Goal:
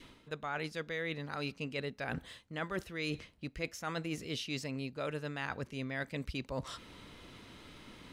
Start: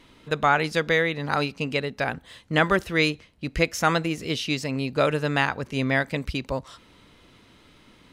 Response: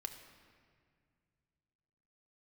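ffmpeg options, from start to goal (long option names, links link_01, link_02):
-af "areverse,acompressor=threshold=-36dB:ratio=8,areverse,adynamicequalizer=threshold=0.00158:dfrequency=850:dqfactor=2.1:tfrequency=850:tqfactor=2.1:attack=5:release=100:ratio=0.375:range=2:mode=cutabove:tftype=bell,volume=1dB"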